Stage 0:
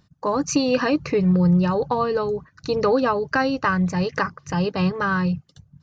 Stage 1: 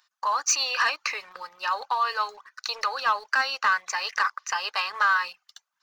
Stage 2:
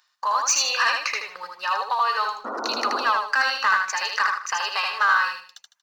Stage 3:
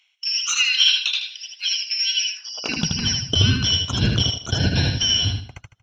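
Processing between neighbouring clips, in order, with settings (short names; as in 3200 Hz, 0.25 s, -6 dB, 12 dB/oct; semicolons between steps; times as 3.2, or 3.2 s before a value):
limiter -16.5 dBFS, peak gain reduction 8 dB; HPF 1000 Hz 24 dB/oct; sample leveller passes 1; gain +4 dB
painted sound noise, 2.44–3.03, 210–1500 Hz -33 dBFS; feedback echo 78 ms, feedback 29%, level -3.5 dB; gain +1.5 dB
four-band scrambler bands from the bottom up 4321; RIAA curve playback; high-pass sweep 2600 Hz -> 98 Hz, 2.31–2.95; gain +5.5 dB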